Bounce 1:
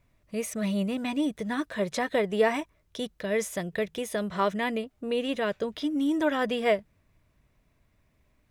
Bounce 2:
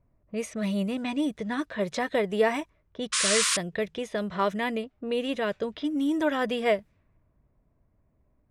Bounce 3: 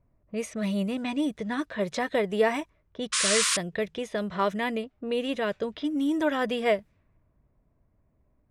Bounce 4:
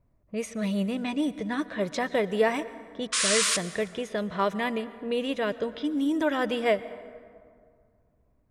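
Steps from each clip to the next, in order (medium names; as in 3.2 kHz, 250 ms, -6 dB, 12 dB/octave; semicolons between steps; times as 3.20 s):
painted sound noise, 3.12–3.57 s, 980–10000 Hz -25 dBFS; level-controlled noise filter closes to 900 Hz, open at -24.5 dBFS
no audible change
plate-style reverb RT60 2.1 s, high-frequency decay 0.5×, pre-delay 105 ms, DRR 15.5 dB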